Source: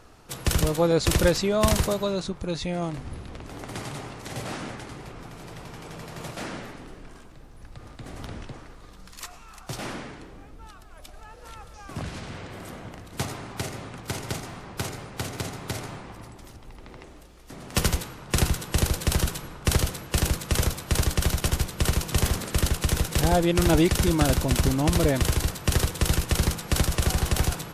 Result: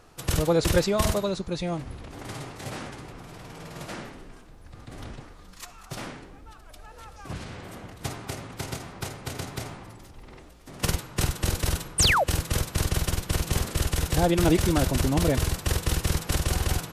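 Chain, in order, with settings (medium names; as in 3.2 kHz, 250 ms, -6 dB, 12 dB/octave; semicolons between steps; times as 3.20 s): de-hum 216 Hz, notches 36; time stretch by phase-locked vocoder 0.61×; painted sound fall, 11.98–12.24 s, 480–10000 Hz -21 dBFS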